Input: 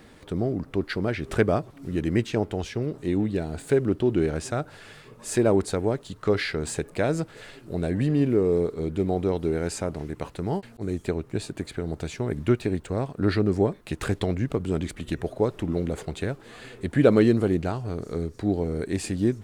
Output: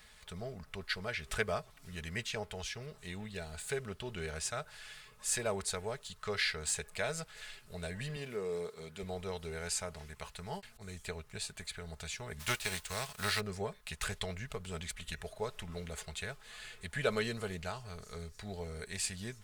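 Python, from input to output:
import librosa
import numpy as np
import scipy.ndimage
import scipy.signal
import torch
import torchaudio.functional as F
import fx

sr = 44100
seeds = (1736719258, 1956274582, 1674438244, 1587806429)

y = fx.highpass(x, sr, hz=160.0, slope=12, at=(8.16, 9.03))
y = fx.envelope_flatten(y, sr, power=0.6, at=(12.39, 13.39), fade=0.02)
y = fx.tone_stack(y, sr, knobs='10-0-10')
y = y + 0.44 * np.pad(y, (int(4.7 * sr / 1000.0), 0))[:len(y)]
y = fx.dynamic_eq(y, sr, hz=490.0, q=1.7, threshold_db=-50.0, ratio=4.0, max_db=4)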